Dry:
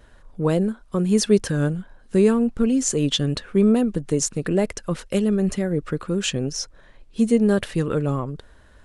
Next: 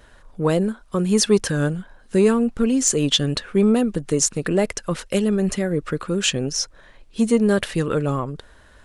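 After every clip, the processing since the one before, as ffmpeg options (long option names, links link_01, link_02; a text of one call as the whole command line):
ffmpeg -i in.wav -af "acontrast=25,lowshelf=frequency=500:gain=-5.5" out.wav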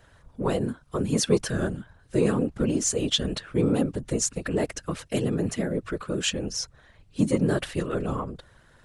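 ffmpeg -i in.wav -af "afftfilt=real='hypot(re,im)*cos(2*PI*random(0))':imag='hypot(re,im)*sin(2*PI*random(1))':win_size=512:overlap=0.75" out.wav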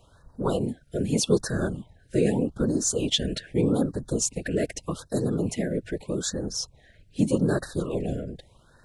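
ffmpeg -i in.wav -af "afftfilt=real='re*(1-between(b*sr/1024,970*pow(2700/970,0.5+0.5*sin(2*PI*0.82*pts/sr))/1.41,970*pow(2700/970,0.5+0.5*sin(2*PI*0.82*pts/sr))*1.41))':imag='im*(1-between(b*sr/1024,970*pow(2700/970,0.5+0.5*sin(2*PI*0.82*pts/sr))/1.41,970*pow(2700/970,0.5+0.5*sin(2*PI*0.82*pts/sr))*1.41))':win_size=1024:overlap=0.75" out.wav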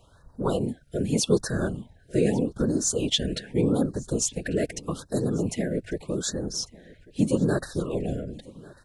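ffmpeg -i in.wav -af "aecho=1:1:1145:0.075" out.wav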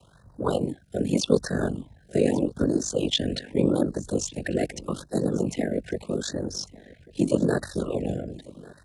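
ffmpeg -i in.wav -filter_complex "[0:a]aeval=exprs='val(0)*sin(2*PI*24*n/s)':channel_layout=same,acrossover=split=5700[link_01][link_02];[link_02]acompressor=threshold=-43dB:ratio=4:attack=1:release=60[link_03];[link_01][link_03]amix=inputs=2:normalize=0,afreqshift=33,volume=3.5dB" out.wav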